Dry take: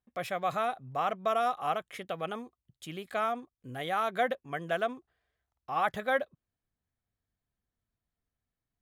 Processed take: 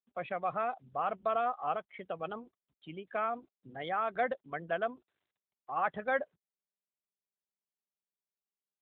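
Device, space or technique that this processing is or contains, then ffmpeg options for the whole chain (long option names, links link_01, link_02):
mobile call with aggressive noise cancelling: -filter_complex "[0:a]asettb=1/sr,asplit=3[link_01][link_02][link_03];[link_01]atrim=end=4.344[link_04];[link_02]atrim=start=4.34:end=4.77,asetpts=PTS-STARTPTS,afade=type=in:duration=0.004:curve=qsin,afade=type=out:start_time=0.426:duration=0.004:curve=qsin,lowpass=5300[link_05];[link_03]atrim=start=4.766[link_06];[link_04][link_05]acrossfade=duration=0.004:curve1=hsin:curve2=qsin[link_07];[link_07][link_06]acrossfade=duration=0.004:curve1=qsin:curve2=hsin,highpass=140,afftdn=noise_reduction=16:noise_floor=-41,volume=-2dB" -ar 8000 -c:a libopencore_amrnb -b:a 12200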